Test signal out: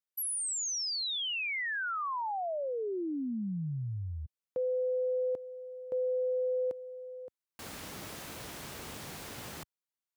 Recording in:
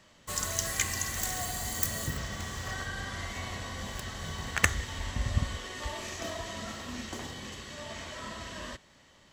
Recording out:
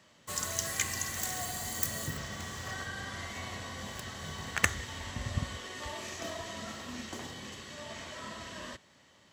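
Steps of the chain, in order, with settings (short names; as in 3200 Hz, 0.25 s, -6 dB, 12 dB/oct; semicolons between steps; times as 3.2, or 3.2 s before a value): HPF 87 Hz 12 dB/oct; gain -2 dB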